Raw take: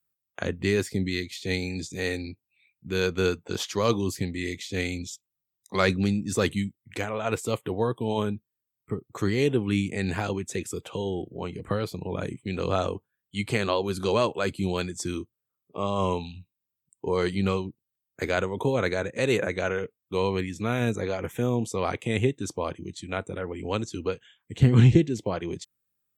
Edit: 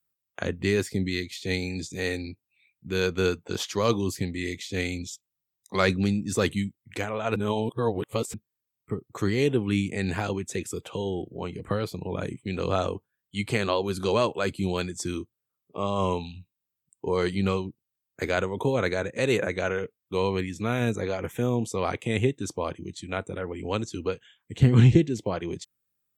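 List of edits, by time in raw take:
7.36–8.34 s: reverse

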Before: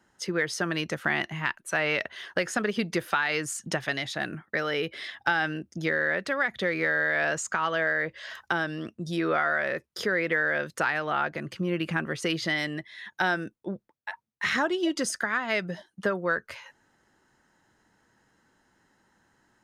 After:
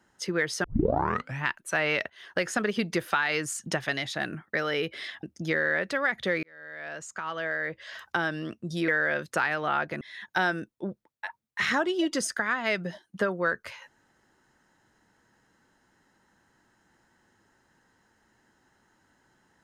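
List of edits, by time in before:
0.64 s: tape start 0.82 s
2.10–2.42 s: fade in, from -19 dB
5.23–5.59 s: delete
6.79–8.65 s: fade in
9.24–10.32 s: delete
11.45–12.85 s: delete

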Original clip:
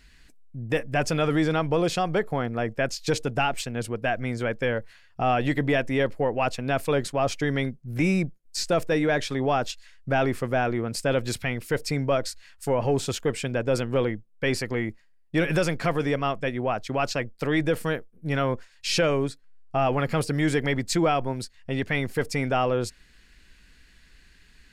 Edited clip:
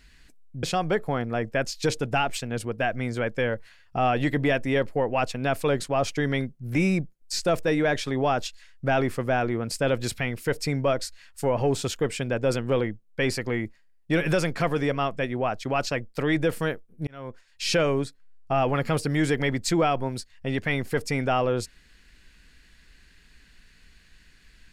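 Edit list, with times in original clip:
0.63–1.87 s: delete
18.31–19.00 s: fade in

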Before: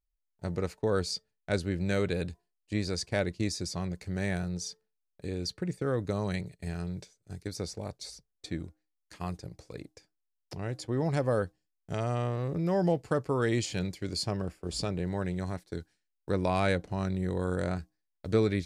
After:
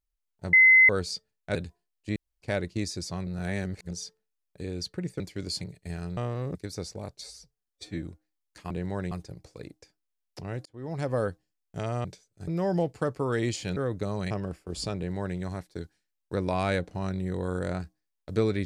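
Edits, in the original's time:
0.53–0.89 s: bleep 2.05 kHz -13 dBFS
1.55–2.19 s: delete
2.80–3.06 s: room tone
3.91–4.55 s: reverse
5.84–6.38 s: swap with 13.86–14.27 s
6.94–7.37 s: swap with 12.19–12.57 s
8.05–8.58 s: stretch 1.5×
10.80–11.28 s: fade in
14.93–15.34 s: copy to 9.26 s

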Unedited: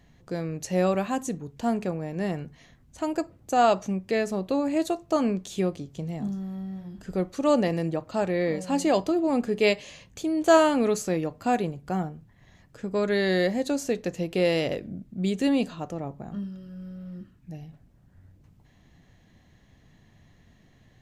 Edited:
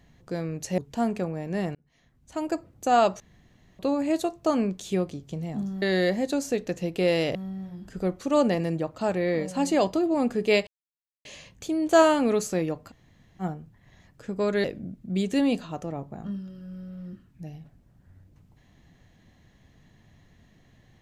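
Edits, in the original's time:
0.78–1.44 s: delete
2.41–3.22 s: fade in
3.86–4.45 s: room tone
9.80 s: insert silence 0.58 s
11.44–11.97 s: room tone, crossfade 0.06 s
13.19–14.72 s: move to 6.48 s

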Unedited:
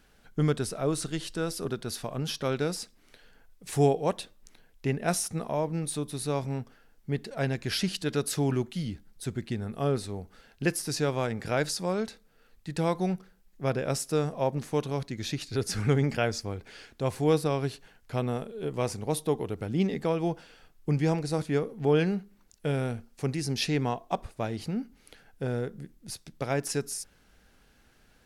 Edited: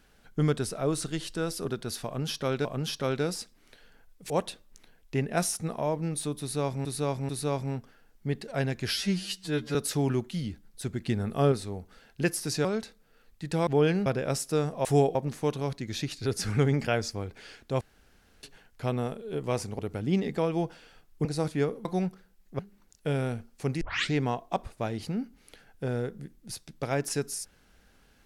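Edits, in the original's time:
2.06–2.65 s: loop, 2 plays
3.71–4.01 s: move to 14.45 s
6.12–6.56 s: loop, 3 plays
7.76–8.17 s: stretch 2×
9.48–9.94 s: gain +4 dB
11.07–11.90 s: delete
12.92–13.66 s: swap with 21.79–22.18 s
17.11–17.73 s: room tone
19.09–19.46 s: delete
20.92–21.19 s: delete
23.40 s: tape start 0.31 s

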